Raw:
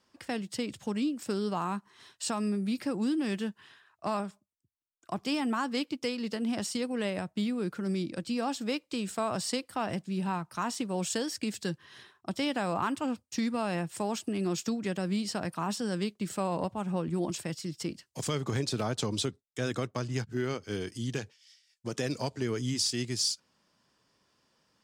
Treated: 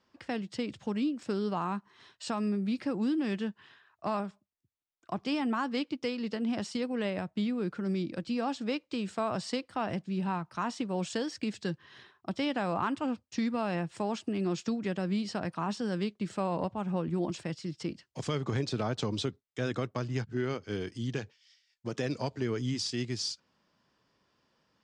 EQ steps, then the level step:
high-frequency loss of the air 110 metres
0.0 dB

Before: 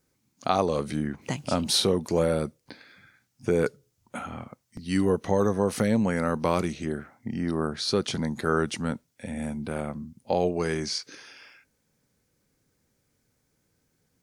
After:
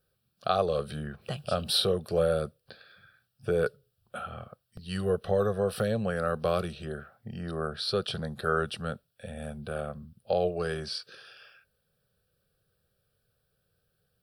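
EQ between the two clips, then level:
phaser with its sweep stopped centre 1,400 Hz, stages 8
0.0 dB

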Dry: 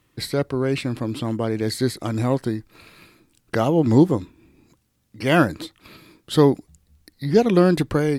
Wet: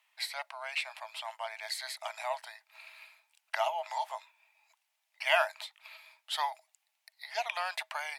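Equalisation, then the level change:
Chebyshev high-pass with heavy ripple 620 Hz, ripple 9 dB
0.0 dB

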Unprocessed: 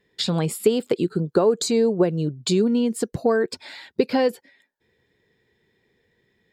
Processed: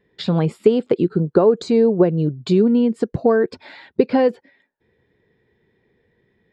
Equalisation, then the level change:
head-to-tape spacing loss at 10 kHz 28 dB
+5.5 dB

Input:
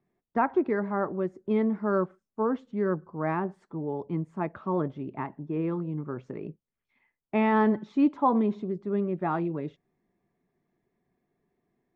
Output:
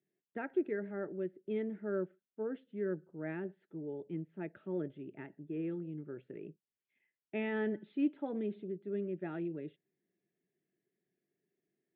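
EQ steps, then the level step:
loudspeaker in its box 230–3,400 Hz, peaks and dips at 240 Hz −9 dB, 500 Hz −4 dB, 760 Hz −9 dB, 1,200 Hz −6 dB, 2,200 Hz −6 dB
phaser with its sweep stopped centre 2,500 Hz, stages 4
−3.5 dB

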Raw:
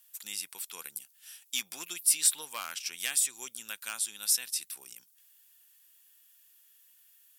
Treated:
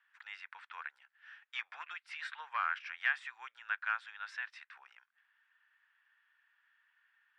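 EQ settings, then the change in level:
high-pass filter 830 Hz 24 dB per octave
transistor ladder low-pass 1,900 Hz, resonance 55%
+12.0 dB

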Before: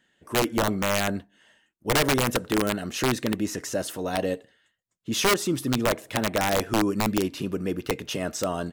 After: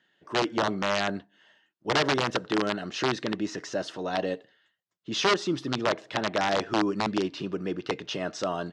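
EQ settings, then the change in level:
loudspeaker in its box 170–5,300 Hz, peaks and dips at 240 Hz −7 dB, 500 Hz −4 dB, 2,300 Hz −4 dB
0.0 dB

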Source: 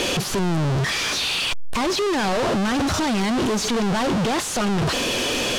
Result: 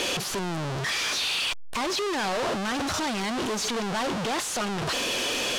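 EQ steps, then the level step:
low-shelf EQ 330 Hz −9 dB
−3.5 dB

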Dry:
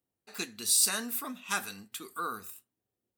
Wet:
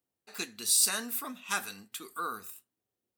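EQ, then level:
low-shelf EQ 200 Hz −5.5 dB
0.0 dB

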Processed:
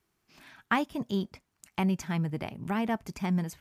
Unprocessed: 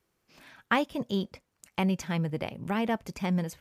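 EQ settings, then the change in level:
dynamic equaliser 3,300 Hz, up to −4 dB, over −49 dBFS, Q 1.1
parametric band 520 Hz −12 dB 0.25 octaves
0.0 dB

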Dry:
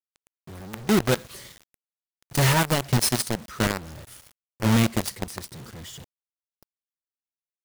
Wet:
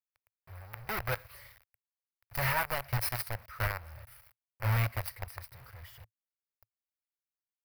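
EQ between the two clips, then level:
drawn EQ curve 110 Hz 0 dB, 180 Hz −25 dB, 370 Hz −20 dB, 550 Hz −6 dB, 1,300 Hz −2 dB, 2,300 Hz −1 dB, 3,400 Hz −14 dB, 4,900 Hz −8 dB, 6,900 Hz −23 dB, 13,000 Hz 0 dB
−4.0 dB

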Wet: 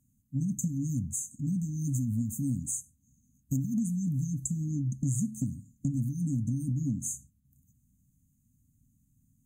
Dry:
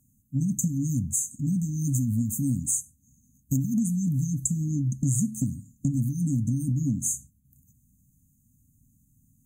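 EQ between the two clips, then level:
high-shelf EQ 7,200 Hz −5.5 dB
−4.5 dB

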